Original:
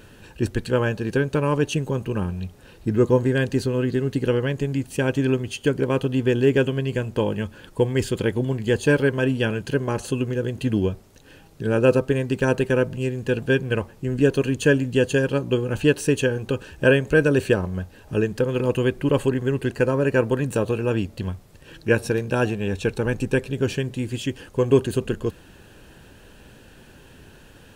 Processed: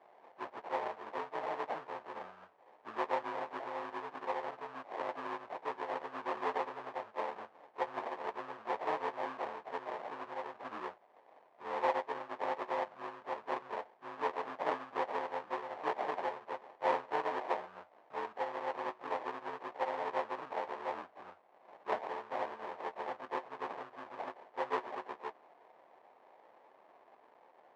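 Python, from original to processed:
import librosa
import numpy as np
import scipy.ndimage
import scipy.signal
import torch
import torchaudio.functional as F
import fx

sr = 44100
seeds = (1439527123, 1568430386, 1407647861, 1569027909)

y = fx.freq_snap(x, sr, grid_st=3)
y = fx.sample_hold(y, sr, seeds[0], rate_hz=1400.0, jitter_pct=20)
y = fx.ladder_bandpass(y, sr, hz=950.0, resonance_pct=30)
y = y * 10.0 ** (-1.0 / 20.0)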